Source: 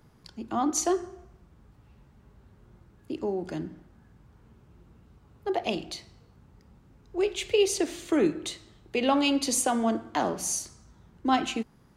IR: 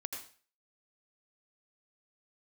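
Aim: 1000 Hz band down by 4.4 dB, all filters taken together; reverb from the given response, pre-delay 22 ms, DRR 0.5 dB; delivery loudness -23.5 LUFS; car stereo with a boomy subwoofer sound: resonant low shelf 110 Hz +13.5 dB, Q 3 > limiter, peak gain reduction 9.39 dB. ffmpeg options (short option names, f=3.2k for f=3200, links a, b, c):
-filter_complex "[0:a]equalizer=f=1k:t=o:g=-6,asplit=2[a][b];[1:a]atrim=start_sample=2205,adelay=22[c];[b][c]afir=irnorm=-1:irlink=0,volume=0dB[d];[a][d]amix=inputs=2:normalize=0,lowshelf=f=110:t=q:w=3:g=13.5,volume=9dB,alimiter=limit=-11dB:level=0:latency=1"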